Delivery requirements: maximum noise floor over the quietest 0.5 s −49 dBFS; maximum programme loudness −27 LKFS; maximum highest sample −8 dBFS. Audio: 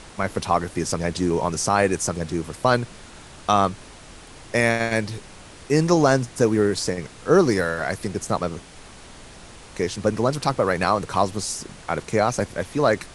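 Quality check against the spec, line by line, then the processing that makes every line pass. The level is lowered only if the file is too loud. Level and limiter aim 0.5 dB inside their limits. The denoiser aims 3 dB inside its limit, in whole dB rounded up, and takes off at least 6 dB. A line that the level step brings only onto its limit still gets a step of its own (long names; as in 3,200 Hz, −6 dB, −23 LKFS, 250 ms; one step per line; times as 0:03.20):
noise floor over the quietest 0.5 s −43 dBFS: out of spec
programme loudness −22.5 LKFS: out of spec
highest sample −4.0 dBFS: out of spec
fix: broadband denoise 6 dB, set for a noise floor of −43 dBFS
level −5 dB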